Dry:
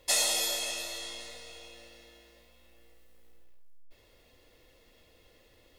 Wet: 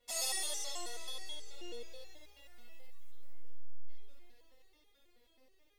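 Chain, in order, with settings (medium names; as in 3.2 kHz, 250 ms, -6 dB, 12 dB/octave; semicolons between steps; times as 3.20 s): Doppler pass-by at 2.63 s, 8 m/s, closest 7.4 m; flutter echo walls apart 11.2 m, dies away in 1.1 s; resonator arpeggio 9.3 Hz 240–410 Hz; trim +12 dB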